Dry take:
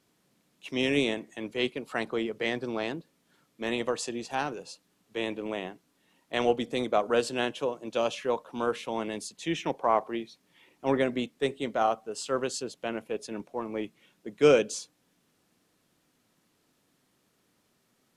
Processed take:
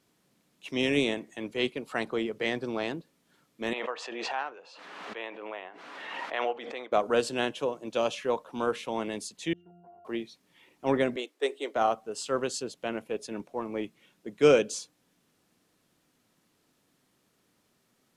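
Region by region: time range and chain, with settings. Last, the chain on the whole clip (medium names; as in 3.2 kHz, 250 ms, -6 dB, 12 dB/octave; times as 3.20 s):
3.73–6.92 s: band-pass 760–2100 Hz + swell ahead of each attack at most 31 dB/s
9.53–10.05 s: peaking EQ 2.6 kHz -6 dB 1 oct + pitch-class resonator F, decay 0.62 s + compression 5:1, threshold -51 dBFS
11.16–11.76 s: steep high-pass 310 Hz 48 dB/octave + tape noise reduction on one side only decoder only
whole clip: none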